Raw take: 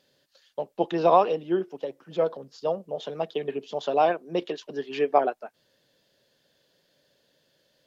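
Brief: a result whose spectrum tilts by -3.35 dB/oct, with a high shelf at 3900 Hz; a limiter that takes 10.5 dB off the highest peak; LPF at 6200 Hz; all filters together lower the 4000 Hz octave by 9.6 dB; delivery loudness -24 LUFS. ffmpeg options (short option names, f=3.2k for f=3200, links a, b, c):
-af "lowpass=6.2k,highshelf=f=3.9k:g=-7,equalizer=f=4k:t=o:g=-9,volume=6.5dB,alimiter=limit=-10dB:level=0:latency=1"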